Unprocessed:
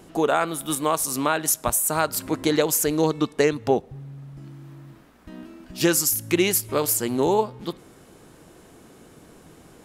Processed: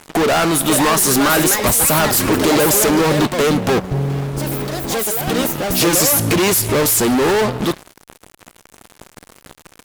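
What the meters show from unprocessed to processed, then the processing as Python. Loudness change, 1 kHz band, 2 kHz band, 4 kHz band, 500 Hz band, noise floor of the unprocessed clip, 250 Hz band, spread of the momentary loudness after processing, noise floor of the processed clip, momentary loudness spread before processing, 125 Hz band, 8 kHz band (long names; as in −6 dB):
+7.5 dB, +7.5 dB, +10.5 dB, +11.0 dB, +7.0 dB, −51 dBFS, +8.5 dB, 9 LU, −53 dBFS, 20 LU, +12.0 dB, +8.5 dB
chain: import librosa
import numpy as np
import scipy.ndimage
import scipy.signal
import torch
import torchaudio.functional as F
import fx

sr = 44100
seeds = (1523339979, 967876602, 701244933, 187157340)

y = fx.fuzz(x, sr, gain_db=37.0, gate_db=-43.0)
y = fx.echo_pitch(y, sr, ms=569, semitones=5, count=2, db_per_echo=-6.0)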